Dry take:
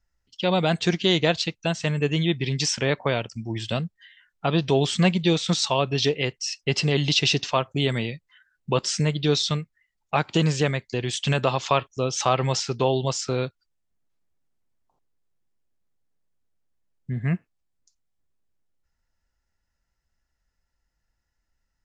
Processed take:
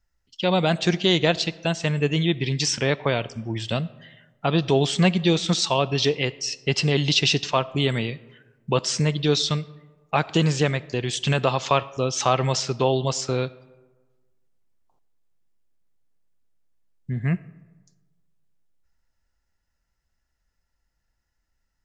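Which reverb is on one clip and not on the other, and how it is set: digital reverb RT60 1.3 s, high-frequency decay 0.5×, pre-delay 25 ms, DRR 19.5 dB; gain +1 dB

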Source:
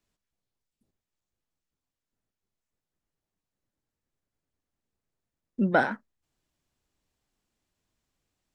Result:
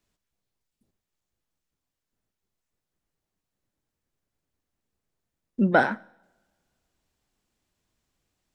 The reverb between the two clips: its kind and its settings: two-slope reverb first 0.71 s, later 2 s, from -21 dB, DRR 20 dB; gain +3 dB

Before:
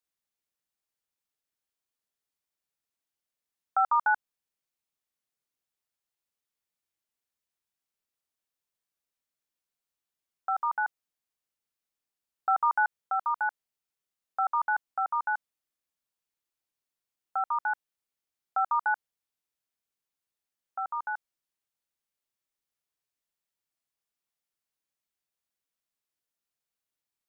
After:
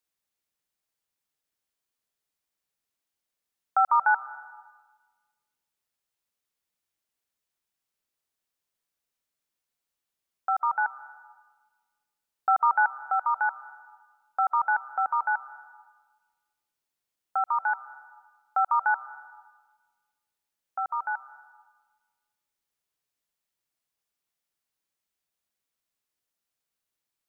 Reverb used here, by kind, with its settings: digital reverb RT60 1.4 s, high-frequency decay 0.75×, pre-delay 0.11 s, DRR 15.5 dB; gain +3 dB

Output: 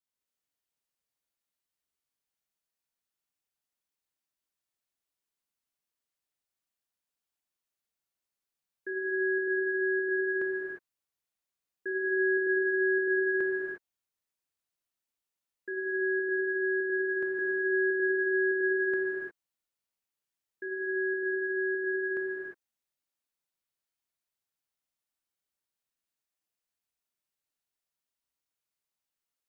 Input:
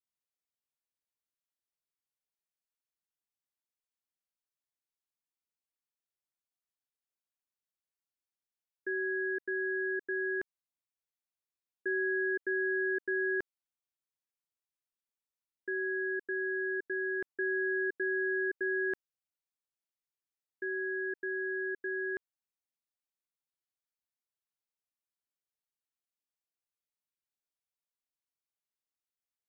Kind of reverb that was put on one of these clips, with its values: non-linear reverb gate 0.38 s flat, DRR -3.5 dB; gain -1 dB

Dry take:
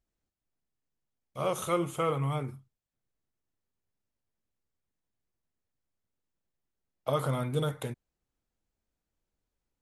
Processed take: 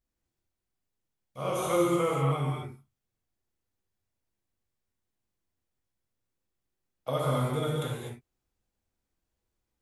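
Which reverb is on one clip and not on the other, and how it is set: non-linear reverb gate 0.28 s flat, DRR -4.5 dB; gain -3.5 dB

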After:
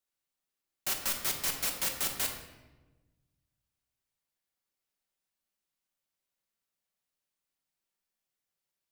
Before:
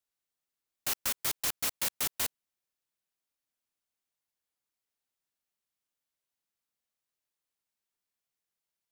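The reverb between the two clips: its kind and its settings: shoebox room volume 680 m³, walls mixed, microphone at 1.1 m; gain -1 dB

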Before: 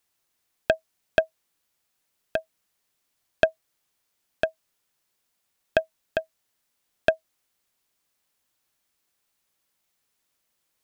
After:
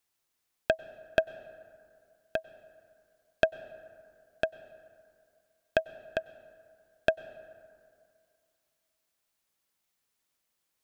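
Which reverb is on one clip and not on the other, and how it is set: plate-style reverb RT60 2.3 s, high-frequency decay 0.45×, pre-delay 85 ms, DRR 17.5 dB; gain -4.5 dB

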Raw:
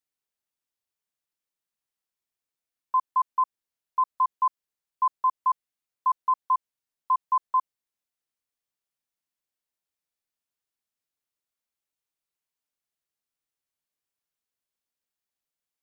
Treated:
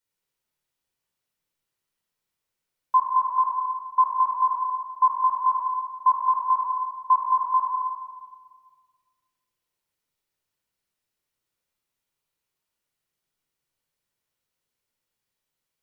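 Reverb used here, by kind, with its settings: shoebox room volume 2400 m³, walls mixed, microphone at 4.7 m

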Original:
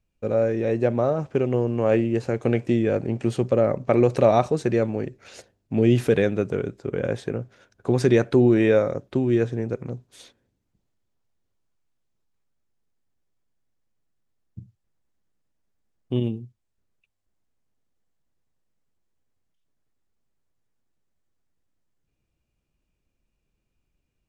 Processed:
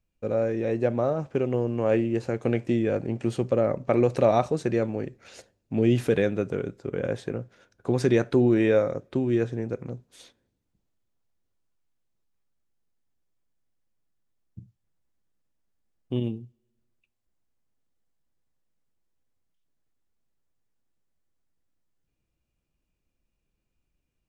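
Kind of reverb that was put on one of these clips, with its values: two-slope reverb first 0.23 s, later 1.5 s, from -27 dB, DRR 18 dB; gain -3 dB

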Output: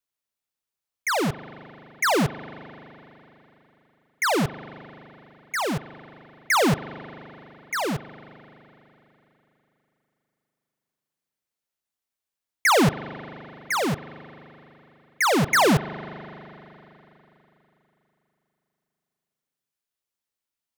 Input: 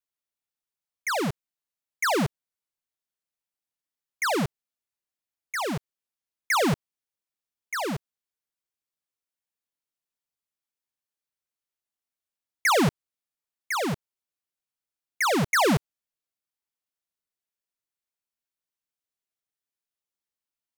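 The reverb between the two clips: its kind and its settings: spring tank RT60 3.5 s, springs 40 ms, chirp 60 ms, DRR 14 dB; gain +3 dB

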